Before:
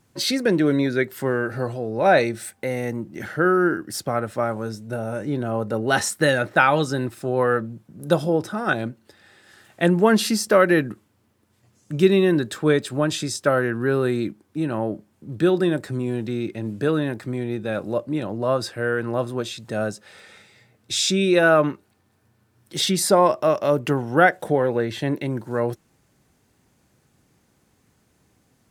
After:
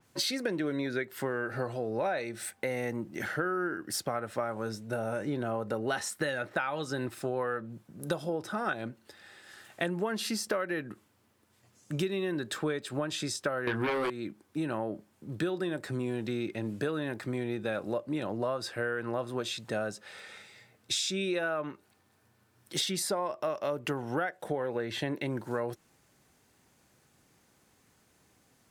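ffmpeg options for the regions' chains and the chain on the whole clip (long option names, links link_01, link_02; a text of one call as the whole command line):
ffmpeg -i in.wav -filter_complex "[0:a]asettb=1/sr,asplit=3[link_01][link_02][link_03];[link_01]atrim=end=13.674[link_04];[link_02]atrim=start=13.67:end=14.1,asetpts=PTS-STARTPTS,afade=type=in:duration=0.004:curve=qsin,afade=type=out:start_time=0.426:duration=0.004:curve=qsin,asplit=2[link_05][link_06];[link_06]adelay=19,volume=-6dB[link_07];[link_05][link_07]amix=inputs=2:normalize=0,atrim=end_sample=18963,aeval=exprs='0.376*sin(PI/2*3.16*val(0)/0.376)':channel_layout=same[link_08];[link_03]atrim=start=14.096[link_09];[link_04][link_08]acrossfade=duration=0.004:curve1=hsin:curve2=qsin[link_10];[link_10][link_09]acrossfade=duration=0.004:curve1=qsin:curve2=hsin,lowshelf=frequency=370:gain=-7.5,acompressor=threshold=-28dB:ratio=12,adynamicequalizer=threshold=0.00316:dfrequency=4500:dqfactor=0.7:tfrequency=4500:tqfactor=0.7:attack=5:release=100:ratio=0.375:range=2.5:mode=cutabove:tftype=highshelf" out.wav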